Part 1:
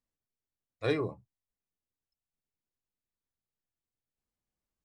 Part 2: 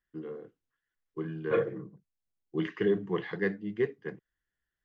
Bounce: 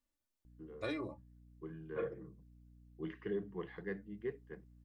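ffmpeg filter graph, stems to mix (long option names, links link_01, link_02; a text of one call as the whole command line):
ffmpeg -i stem1.wav -i stem2.wav -filter_complex "[0:a]aecho=1:1:3.4:0.78,acompressor=threshold=-39dB:ratio=3,volume=-0.5dB[link_01];[1:a]lowpass=frequency=2500:poles=1,aeval=exprs='val(0)+0.00398*(sin(2*PI*60*n/s)+sin(2*PI*2*60*n/s)/2+sin(2*PI*3*60*n/s)/3+sin(2*PI*4*60*n/s)/4+sin(2*PI*5*60*n/s)/5)':channel_layout=same,adelay=450,volume=-11.5dB[link_02];[link_01][link_02]amix=inputs=2:normalize=0" out.wav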